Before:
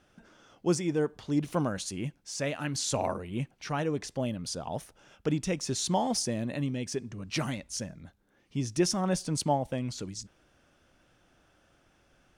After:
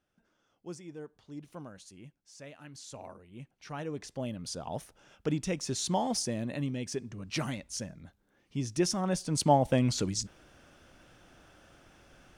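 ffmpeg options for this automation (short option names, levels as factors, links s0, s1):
-af "volume=2.24,afade=t=in:st=3.3:d=0.47:silence=0.398107,afade=t=in:st=3.77:d=0.97:silence=0.501187,afade=t=in:st=9.26:d=0.49:silence=0.354813"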